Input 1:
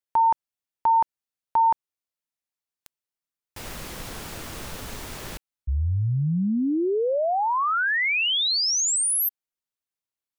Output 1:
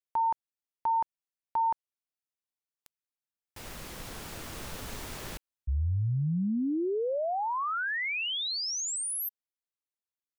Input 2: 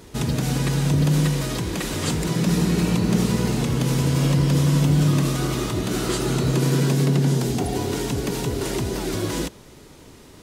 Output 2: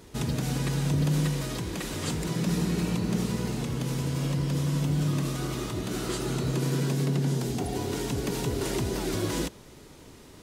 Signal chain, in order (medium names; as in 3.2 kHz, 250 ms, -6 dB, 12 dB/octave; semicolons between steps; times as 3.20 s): gain riding within 4 dB 2 s; trim -7.5 dB